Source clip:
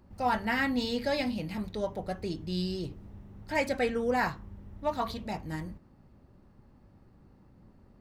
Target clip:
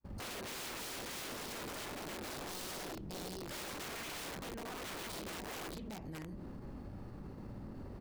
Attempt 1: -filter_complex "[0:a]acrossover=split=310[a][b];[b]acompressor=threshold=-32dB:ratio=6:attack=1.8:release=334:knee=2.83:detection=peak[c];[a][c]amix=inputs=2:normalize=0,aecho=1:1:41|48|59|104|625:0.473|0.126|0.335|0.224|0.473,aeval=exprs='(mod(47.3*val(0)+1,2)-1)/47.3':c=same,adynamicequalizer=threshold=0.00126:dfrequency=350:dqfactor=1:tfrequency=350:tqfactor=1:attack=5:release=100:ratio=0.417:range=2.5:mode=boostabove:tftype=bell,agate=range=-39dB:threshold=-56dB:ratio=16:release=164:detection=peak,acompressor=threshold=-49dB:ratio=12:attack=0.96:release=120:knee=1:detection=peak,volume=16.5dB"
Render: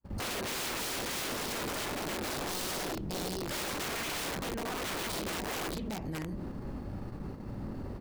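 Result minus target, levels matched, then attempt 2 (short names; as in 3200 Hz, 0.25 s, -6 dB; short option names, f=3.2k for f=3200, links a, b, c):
compressor: peak gain reduction -8 dB
-filter_complex "[0:a]acrossover=split=310[a][b];[b]acompressor=threshold=-32dB:ratio=6:attack=1.8:release=334:knee=2.83:detection=peak[c];[a][c]amix=inputs=2:normalize=0,aecho=1:1:41|48|59|104|625:0.473|0.126|0.335|0.224|0.473,aeval=exprs='(mod(47.3*val(0)+1,2)-1)/47.3':c=same,adynamicequalizer=threshold=0.00126:dfrequency=350:dqfactor=1:tfrequency=350:tqfactor=1:attack=5:release=100:ratio=0.417:range=2.5:mode=boostabove:tftype=bell,agate=range=-39dB:threshold=-56dB:ratio=16:release=164:detection=peak,acompressor=threshold=-58dB:ratio=12:attack=0.96:release=120:knee=1:detection=peak,volume=16.5dB"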